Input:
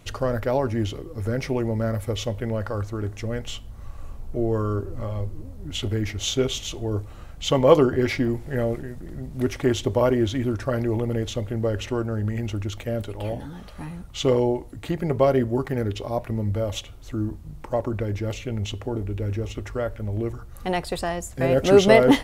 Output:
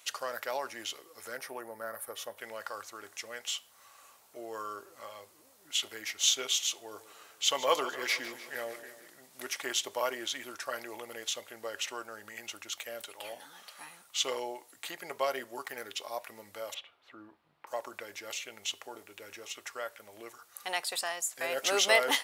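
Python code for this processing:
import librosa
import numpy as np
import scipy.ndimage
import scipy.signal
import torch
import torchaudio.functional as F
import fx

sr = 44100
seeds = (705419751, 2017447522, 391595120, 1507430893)

y = fx.spec_box(x, sr, start_s=1.38, length_s=0.99, low_hz=1900.0, high_hz=8500.0, gain_db=-11)
y = fx.echo_feedback(y, sr, ms=152, feedback_pct=60, wet_db=-14.5, at=(6.74, 9.07))
y = fx.air_absorb(y, sr, metres=430.0, at=(16.74, 17.67))
y = scipy.signal.sosfilt(scipy.signal.butter(2, 950.0, 'highpass', fs=sr, output='sos'), y)
y = fx.high_shelf(y, sr, hz=3700.0, db=9.5)
y = y * 10.0 ** (-4.0 / 20.0)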